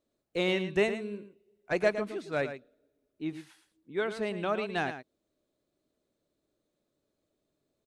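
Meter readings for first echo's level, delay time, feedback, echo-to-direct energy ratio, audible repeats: −10.5 dB, 111 ms, repeats not evenly spaced, −10.5 dB, 1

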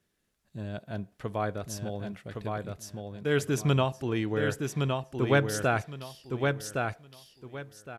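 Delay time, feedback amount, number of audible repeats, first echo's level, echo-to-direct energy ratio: 1,114 ms, 23%, 3, −4.0 dB, −4.0 dB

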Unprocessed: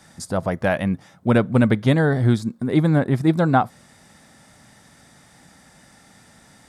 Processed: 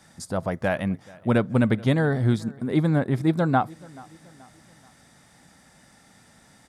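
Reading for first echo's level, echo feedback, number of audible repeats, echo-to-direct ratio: −23.0 dB, 46%, 2, −22.0 dB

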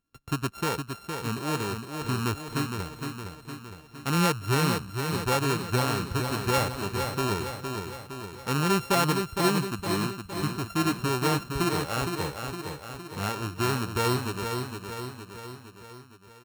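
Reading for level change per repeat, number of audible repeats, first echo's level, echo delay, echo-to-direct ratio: −5.0 dB, 5, −6.0 dB, 462 ms, −4.5 dB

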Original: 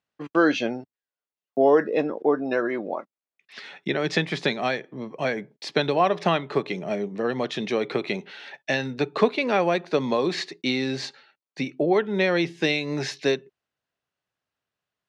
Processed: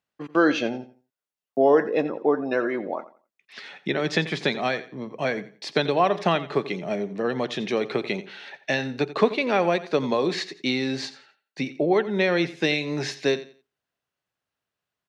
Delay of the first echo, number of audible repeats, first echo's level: 87 ms, 2, −15.5 dB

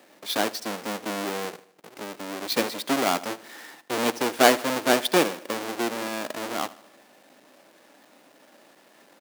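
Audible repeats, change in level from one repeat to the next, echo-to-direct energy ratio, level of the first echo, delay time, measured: 3, −6.0 dB, −18.0 dB, −19.0 dB, 77 ms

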